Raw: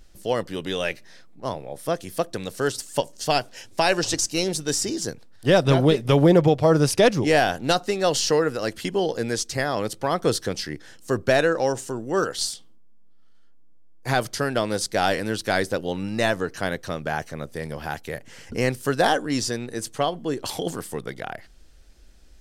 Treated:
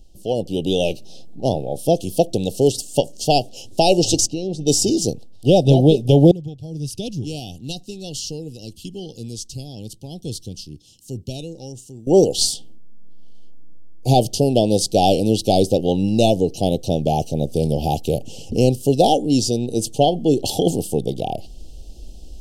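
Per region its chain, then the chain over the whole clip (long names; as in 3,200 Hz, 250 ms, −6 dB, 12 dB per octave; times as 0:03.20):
0:04.27–0:04.67: downward compressor, threshold −28 dBFS + head-to-tape spacing loss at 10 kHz 20 dB
0:06.31–0:12.07: guitar amp tone stack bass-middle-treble 6-0-2 + one half of a high-frequency compander encoder only
whole clip: Chebyshev band-stop filter 800–2,800 Hz, order 4; low-shelf EQ 420 Hz +6 dB; automatic gain control; level −1 dB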